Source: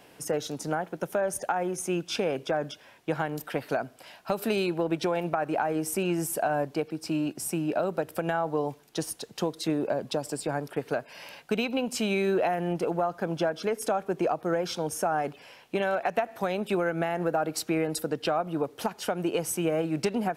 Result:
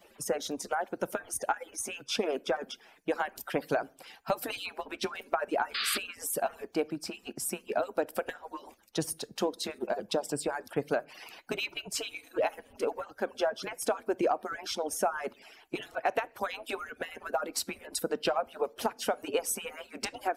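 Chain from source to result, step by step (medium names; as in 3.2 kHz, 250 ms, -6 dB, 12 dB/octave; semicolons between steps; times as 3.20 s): harmonic-percussive separation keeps percussive; on a send at -21 dB: reverberation RT60 0.45 s, pre-delay 3 ms; on the sum: painted sound noise, 5.74–5.98 s, 1.1–5 kHz -32 dBFS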